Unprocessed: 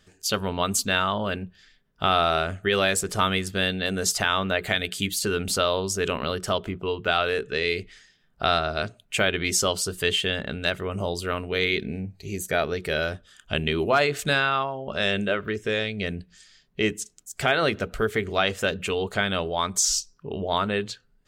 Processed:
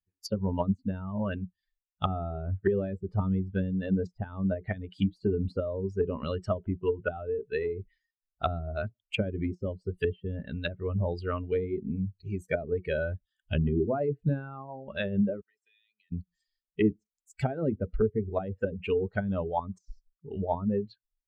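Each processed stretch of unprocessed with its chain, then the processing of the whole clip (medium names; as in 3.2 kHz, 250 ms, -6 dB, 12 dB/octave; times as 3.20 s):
15.41–16.12 s: differentiator + compression 10:1, threshold -41 dBFS + comb of notches 550 Hz
whole clip: expander on every frequency bin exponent 2; low-pass that closes with the level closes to 310 Hz, closed at -27 dBFS; treble shelf 6.3 kHz -11 dB; trim +7 dB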